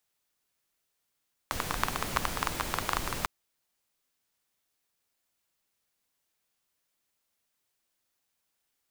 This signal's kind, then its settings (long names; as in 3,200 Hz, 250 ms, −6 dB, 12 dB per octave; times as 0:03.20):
rain-like ticks over hiss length 1.75 s, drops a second 14, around 1,100 Hz, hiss 0 dB